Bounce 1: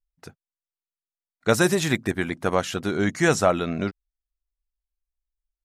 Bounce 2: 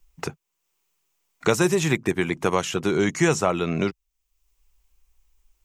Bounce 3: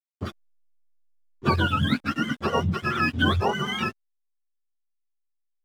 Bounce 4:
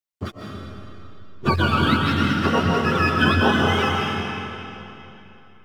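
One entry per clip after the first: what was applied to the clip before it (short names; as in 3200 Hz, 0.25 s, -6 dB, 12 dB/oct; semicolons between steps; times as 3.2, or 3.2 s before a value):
ripple EQ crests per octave 0.73, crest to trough 6 dB; three-band squash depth 70%
spectrum mirrored in octaves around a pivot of 720 Hz; backlash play -38 dBFS
digital reverb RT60 3.1 s, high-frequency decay 0.9×, pre-delay 0.1 s, DRR -1.5 dB; gain +2 dB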